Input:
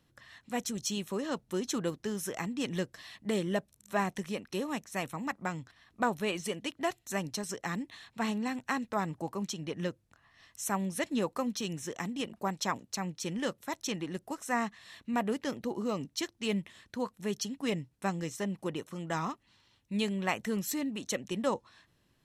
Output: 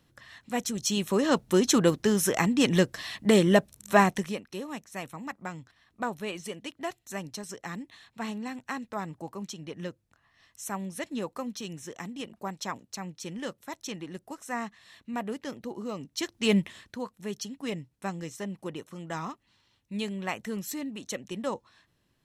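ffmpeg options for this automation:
ffmpeg -i in.wav -af "volume=23dB,afade=type=in:start_time=0.78:duration=0.57:silence=0.446684,afade=type=out:start_time=3.95:duration=0.49:silence=0.211349,afade=type=in:start_time=16.08:duration=0.51:silence=0.251189,afade=type=out:start_time=16.59:duration=0.41:silence=0.281838" out.wav

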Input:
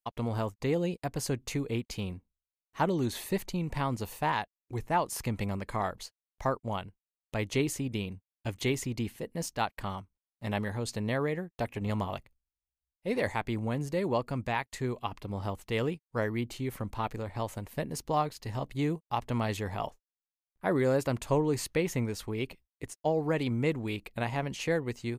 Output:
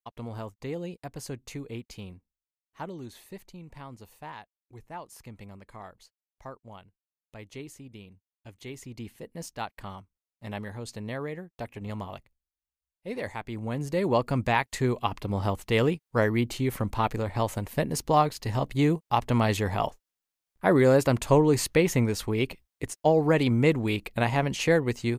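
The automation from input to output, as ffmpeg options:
ffmpeg -i in.wav -af "volume=14dB,afade=type=out:start_time=1.89:duration=1.36:silence=0.446684,afade=type=in:start_time=8.64:duration=0.61:silence=0.375837,afade=type=in:start_time=13.5:duration=0.86:silence=0.281838" out.wav

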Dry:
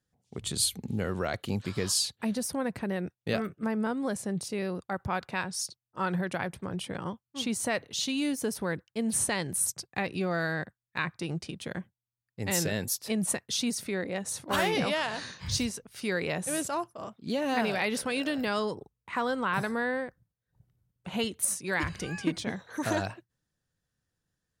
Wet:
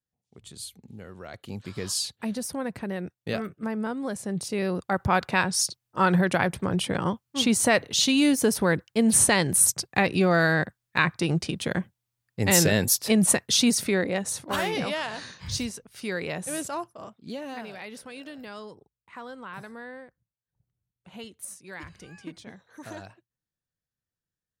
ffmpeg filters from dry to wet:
ffmpeg -i in.wav -af "volume=9dB,afade=type=in:start_time=1.19:duration=0.92:silence=0.251189,afade=type=in:start_time=4.18:duration=1:silence=0.354813,afade=type=out:start_time=13.83:duration=0.75:silence=0.334965,afade=type=out:start_time=16.91:duration=0.72:silence=0.298538" out.wav

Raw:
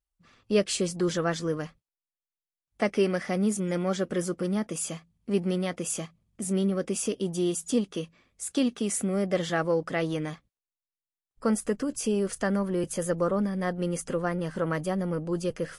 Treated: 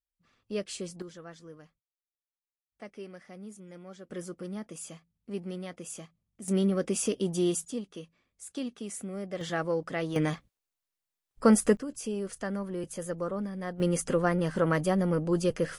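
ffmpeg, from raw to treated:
ffmpeg -i in.wav -af "asetnsamples=nb_out_samples=441:pad=0,asendcmd='1.02 volume volume -19dB;4.1 volume volume -10dB;6.48 volume volume 0dB;7.65 volume volume -10dB;9.41 volume volume -4dB;10.16 volume volume 5dB;11.77 volume volume -7dB;13.8 volume volume 2.5dB',volume=-10dB" out.wav

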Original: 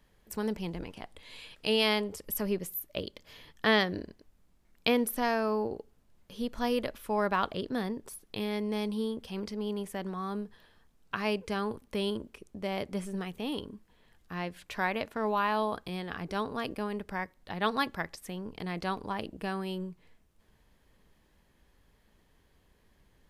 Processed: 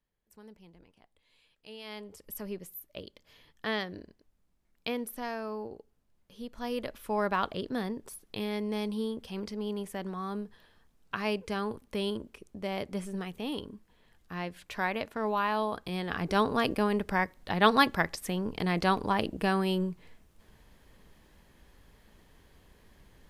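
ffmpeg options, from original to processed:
ffmpeg -i in.wav -af "volume=7dB,afade=type=in:start_time=1.83:duration=0.41:silence=0.251189,afade=type=in:start_time=6.56:duration=0.52:silence=0.446684,afade=type=in:start_time=15.75:duration=0.65:silence=0.421697" out.wav

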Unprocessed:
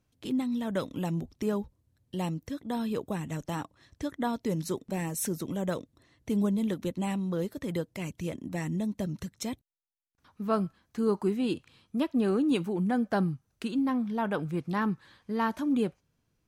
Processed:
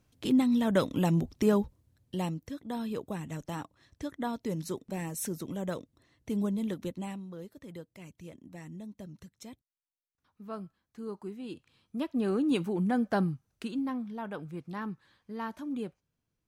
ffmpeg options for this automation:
ffmpeg -i in.wav -af "volume=17dB,afade=type=out:start_time=1.61:duration=0.81:silence=0.375837,afade=type=out:start_time=6.84:duration=0.44:silence=0.354813,afade=type=in:start_time=11.44:duration=1.21:silence=0.251189,afade=type=out:start_time=13.15:duration=1.04:silence=0.398107" out.wav

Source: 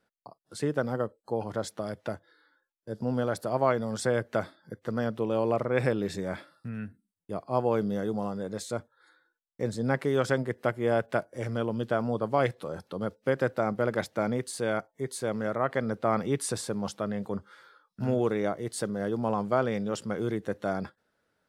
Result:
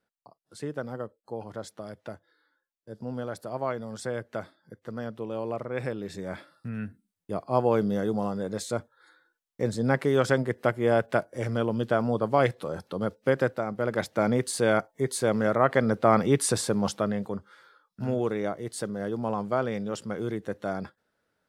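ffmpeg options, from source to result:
ffmpeg -i in.wav -af "volume=13dB,afade=type=in:start_time=6.05:duration=0.8:silence=0.375837,afade=type=out:start_time=13.39:duration=0.27:silence=0.446684,afade=type=in:start_time=13.66:duration=0.82:silence=0.316228,afade=type=out:start_time=16.93:duration=0.44:silence=0.446684" out.wav

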